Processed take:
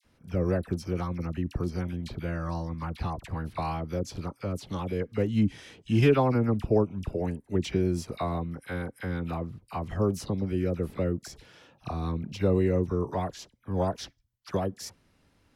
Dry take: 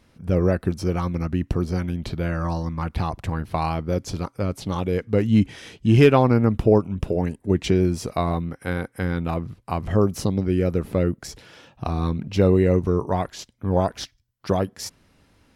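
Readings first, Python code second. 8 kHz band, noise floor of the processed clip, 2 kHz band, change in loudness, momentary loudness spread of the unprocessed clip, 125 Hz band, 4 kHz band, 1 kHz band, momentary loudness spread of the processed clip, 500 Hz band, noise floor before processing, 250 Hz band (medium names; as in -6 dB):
-7.0 dB, -66 dBFS, -7.0 dB, -7.0 dB, 11 LU, -7.0 dB, -7.0 dB, -7.0 dB, 11 LU, -7.0 dB, -63 dBFS, -7.0 dB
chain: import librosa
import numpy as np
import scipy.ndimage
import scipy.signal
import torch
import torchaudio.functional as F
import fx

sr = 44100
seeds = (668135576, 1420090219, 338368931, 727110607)

y = fx.dispersion(x, sr, late='lows', ms=48.0, hz=1400.0)
y = y * librosa.db_to_amplitude(-7.0)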